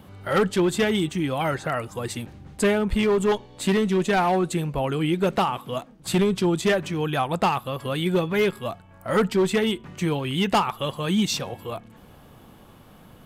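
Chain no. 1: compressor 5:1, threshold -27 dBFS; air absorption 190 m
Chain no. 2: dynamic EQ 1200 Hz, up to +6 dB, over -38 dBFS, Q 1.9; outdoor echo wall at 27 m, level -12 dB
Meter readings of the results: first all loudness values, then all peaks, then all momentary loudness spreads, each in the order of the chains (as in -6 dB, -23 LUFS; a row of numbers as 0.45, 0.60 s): -31.5, -23.0 LUFS; -18.0, -8.5 dBFS; 10, 11 LU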